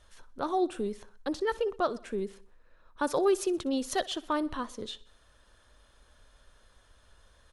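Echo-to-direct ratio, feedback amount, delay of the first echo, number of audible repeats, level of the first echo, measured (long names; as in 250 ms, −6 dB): −19.5 dB, 54%, 62 ms, 3, −21.0 dB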